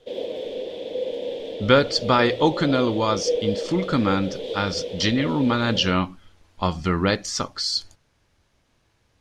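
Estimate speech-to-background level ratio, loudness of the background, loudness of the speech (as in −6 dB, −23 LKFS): 8.0 dB, −30.5 LKFS, −22.5 LKFS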